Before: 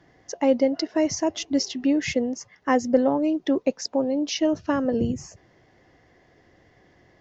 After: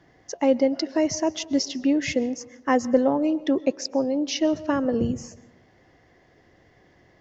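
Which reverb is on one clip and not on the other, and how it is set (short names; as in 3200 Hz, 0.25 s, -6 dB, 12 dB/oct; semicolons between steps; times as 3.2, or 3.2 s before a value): digital reverb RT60 1 s, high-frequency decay 0.5×, pre-delay 90 ms, DRR 19.5 dB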